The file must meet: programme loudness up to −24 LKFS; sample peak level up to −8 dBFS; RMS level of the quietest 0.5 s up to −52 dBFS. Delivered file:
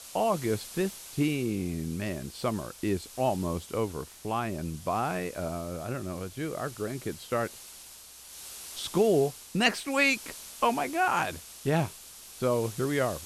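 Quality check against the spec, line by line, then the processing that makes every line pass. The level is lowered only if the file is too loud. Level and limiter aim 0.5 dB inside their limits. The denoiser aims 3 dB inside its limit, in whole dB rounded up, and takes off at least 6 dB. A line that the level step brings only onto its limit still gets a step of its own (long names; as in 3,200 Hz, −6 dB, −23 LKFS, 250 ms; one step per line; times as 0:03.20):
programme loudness −30.0 LKFS: in spec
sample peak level −9.5 dBFS: in spec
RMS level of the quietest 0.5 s −49 dBFS: out of spec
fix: broadband denoise 6 dB, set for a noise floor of −49 dBFS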